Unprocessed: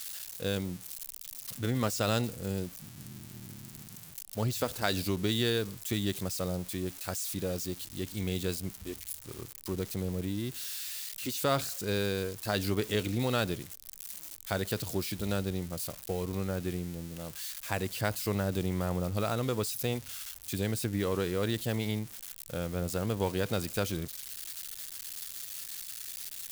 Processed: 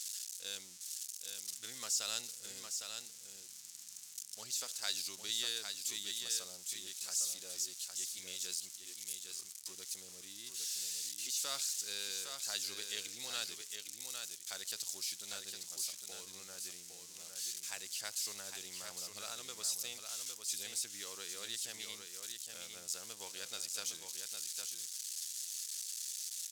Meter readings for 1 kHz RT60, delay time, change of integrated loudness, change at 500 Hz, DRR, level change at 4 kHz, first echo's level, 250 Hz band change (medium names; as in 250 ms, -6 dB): no reverb, 808 ms, -6.0 dB, -22.5 dB, no reverb, -1.0 dB, -6.0 dB, -28.0 dB